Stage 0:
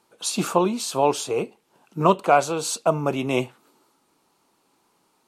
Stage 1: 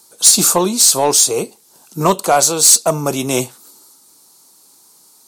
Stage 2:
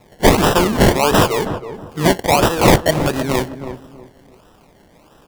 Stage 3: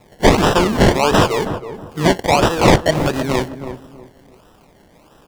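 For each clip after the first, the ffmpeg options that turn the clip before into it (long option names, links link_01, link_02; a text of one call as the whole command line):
ffmpeg -i in.wav -af "aexciter=amount=5.6:drive=7.2:freq=4000,acontrast=62,volume=-1dB" out.wav
ffmpeg -i in.wav -filter_complex "[0:a]acrusher=samples=28:mix=1:aa=0.000001:lfo=1:lforange=16.8:lforate=1.5,asplit=2[link_01][link_02];[link_02]adelay=321,lowpass=frequency=1000:poles=1,volume=-9dB,asplit=2[link_03][link_04];[link_04]adelay=321,lowpass=frequency=1000:poles=1,volume=0.3,asplit=2[link_05][link_06];[link_06]adelay=321,lowpass=frequency=1000:poles=1,volume=0.3[link_07];[link_03][link_05][link_07]amix=inputs=3:normalize=0[link_08];[link_01][link_08]amix=inputs=2:normalize=0,volume=-1dB" out.wav
ffmpeg -i in.wav -filter_complex "[0:a]acrossover=split=8000[link_01][link_02];[link_02]acompressor=threshold=-34dB:ratio=4:attack=1:release=60[link_03];[link_01][link_03]amix=inputs=2:normalize=0" out.wav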